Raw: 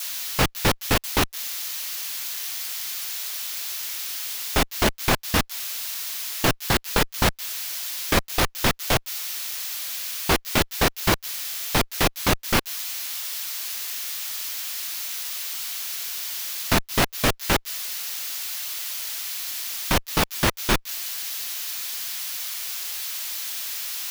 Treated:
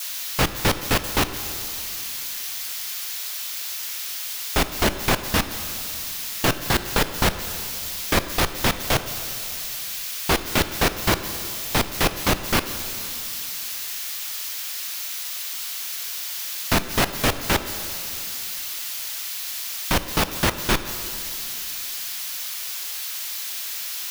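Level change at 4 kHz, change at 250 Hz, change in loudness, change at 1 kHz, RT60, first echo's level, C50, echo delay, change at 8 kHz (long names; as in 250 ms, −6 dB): +0.5 dB, +0.5 dB, +0.5 dB, +0.5 dB, 2.8 s, no echo audible, 11.0 dB, no echo audible, +0.5 dB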